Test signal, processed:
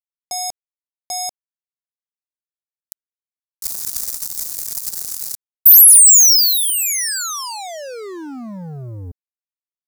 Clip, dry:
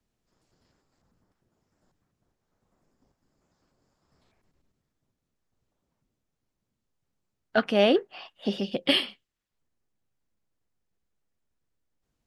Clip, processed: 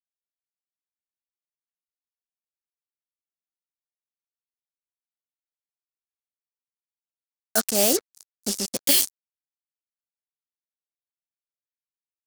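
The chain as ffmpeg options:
-af "acrusher=bits=4:mix=0:aa=0.5,aexciter=amount=15.2:drive=1.1:freq=4.5k,aeval=exprs='1.12*(cos(1*acos(clip(val(0)/1.12,-1,1)))-cos(1*PI/2))+0.0316*(cos(3*acos(clip(val(0)/1.12,-1,1)))-cos(3*PI/2))':c=same,volume=-2.5dB"

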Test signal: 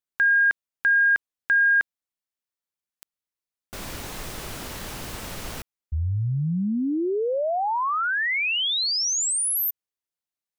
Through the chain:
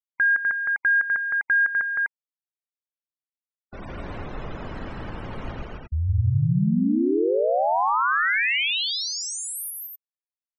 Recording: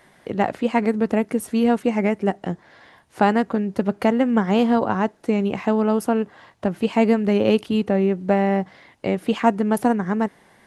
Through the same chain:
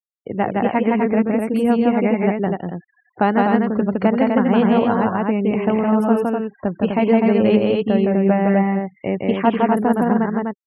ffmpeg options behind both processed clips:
-af "afftfilt=real='re*gte(hypot(re,im),0.02)':imag='im*gte(hypot(re,im),0.02)':win_size=1024:overlap=0.75,bass=f=250:g=1,treble=f=4k:g=-11,aecho=1:1:163.3|250.7:0.794|0.631"

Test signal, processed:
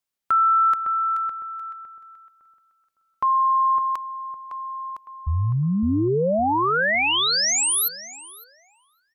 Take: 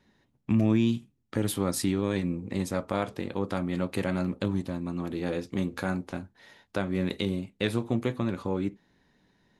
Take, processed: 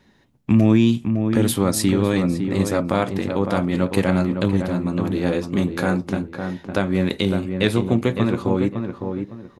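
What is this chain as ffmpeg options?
-filter_complex "[0:a]asplit=2[a][b];[b]adelay=558,lowpass=f=1.6k:p=1,volume=-6dB,asplit=2[c][d];[d]adelay=558,lowpass=f=1.6k:p=1,volume=0.3,asplit=2[e][f];[f]adelay=558,lowpass=f=1.6k:p=1,volume=0.3,asplit=2[g][h];[h]adelay=558,lowpass=f=1.6k:p=1,volume=0.3[i];[a][c][e][g][i]amix=inputs=5:normalize=0,volume=8.5dB"

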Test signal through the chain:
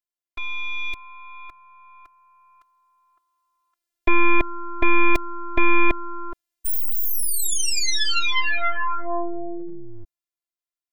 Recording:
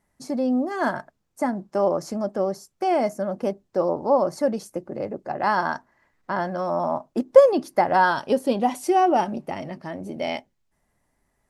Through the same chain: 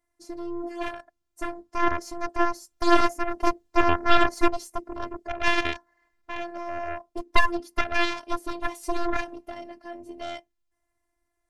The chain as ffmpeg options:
-af "dynaudnorm=f=240:g=17:m=16dB,aeval=exprs='0.944*(cos(1*acos(clip(val(0)/0.944,-1,1)))-cos(1*PI/2))+0.0266*(cos(3*acos(clip(val(0)/0.944,-1,1)))-cos(3*PI/2))+0.422*(cos(4*acos(clip(val(0)/0.944,-1,1)))-cos(4*PI/2))+0.299*(cos(7*acos(clip(val(0)/0.944,-1,1)))-cos(7*PI/2))':c=same,afftfilt=real='hypot(re,im)*cos(PI*b)':imag='0':win_size=512:overlap=0.75,volume=-6.5dB"

